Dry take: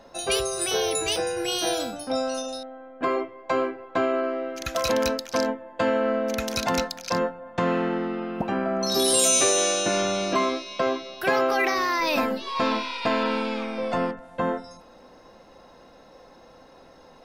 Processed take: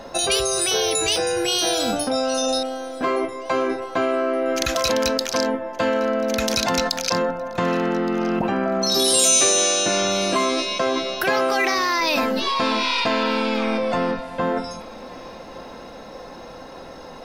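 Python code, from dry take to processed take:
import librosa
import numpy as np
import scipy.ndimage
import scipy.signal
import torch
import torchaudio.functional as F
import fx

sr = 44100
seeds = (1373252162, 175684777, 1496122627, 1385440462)

p1 = fx.dynamic_eq(x, sr, hz=4900.0, q=0.72, threshold_db=-38.0, ratio=4.0, max_db=5)
p2 = fx.over_compress(p1, sr, threshold_db=-33.0, ratio=-1.0)
p3 = p1 + F.gain(torch.from_numpy(p2), 2.0).numpy()
y = fx.echo_feedback(p3, sr, ms=1169, feedback_pct=42, wet_db=-22.5)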